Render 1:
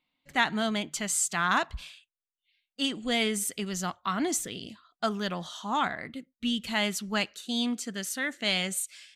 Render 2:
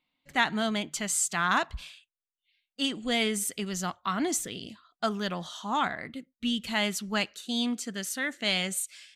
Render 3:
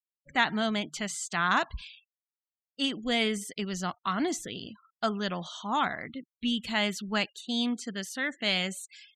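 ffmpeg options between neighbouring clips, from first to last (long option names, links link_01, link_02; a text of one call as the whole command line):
ffmpeg -i in.wav -af anull out.wav
ffmpeg -i in.wav -filter_complex "[0:a]afftfilt=real='re*gte(hypot(re,im),0.00447)':imag='im*gte(hypot(re,im),0.00447)':win_size=1024:overlap=0.75,acrossover=split=5900[link_01][link_02];[link_02]acompressor=threshold=-45dB:ratio=4:attack=1:release=60[link_03];[link_01][link_03]amix=inputs=2:normalize=0" out.wav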